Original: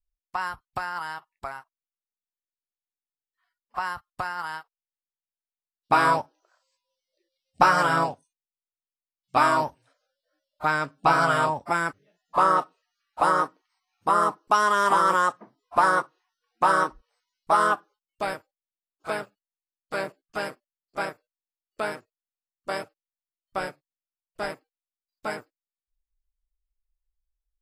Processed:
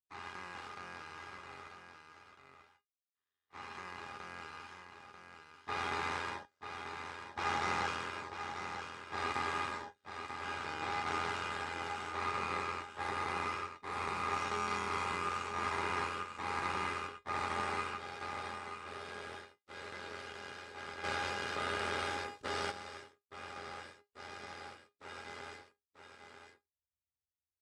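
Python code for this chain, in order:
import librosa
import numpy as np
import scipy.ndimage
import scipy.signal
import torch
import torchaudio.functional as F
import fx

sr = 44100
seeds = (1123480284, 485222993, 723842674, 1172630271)

p1 = fx.spec_dilate(x, sr, span_ms=480)
p2 = p1 * np.sin(2.0 * np.pi * 43.0 * np.arange(len(p1)) / sr)
p3 = np.maximum(p2, 0.0)
p4 = fx.cabinet(p3, sr, low_hz=110.0, low_slope=12, high_hz=9000.0, hz=(160.0, 690.0, 3700.0), db=(-6, -8, 3))
p5 = fx.comb_fb(p4, sr, f0_hz=410.0, decay_s=0.15, harmonics='all', damping=0.0, mix_pct=80)
p6 = p5 + fx.echo_single(p5, sr, ms=940, db=-7.5, dry=0)
p7 = fx.env_flatten(p6, sr, amount_pct=70, at=(21.03, 22.7), fade=0.02)
y = p7 * librosa.db_to_amplitude(-5.0)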